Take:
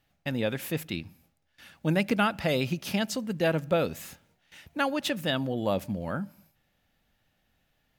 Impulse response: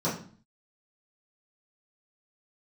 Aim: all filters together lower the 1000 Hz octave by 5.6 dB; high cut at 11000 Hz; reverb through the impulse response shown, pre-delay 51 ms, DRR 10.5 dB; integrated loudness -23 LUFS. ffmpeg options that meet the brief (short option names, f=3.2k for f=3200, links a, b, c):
-filter_complex "[0:a]lowpass=11k,equalizer=f=1k:t=o:g=-8.5,asplit=2[a][b];[1:a]atrim=start_sample=2205,adelay=51[c];[b][c]afir=irnorm=-1:irlink=0,volume=-20.5dB[d];[a][d]amix=inputs=2:normalize=0,volume=6dB"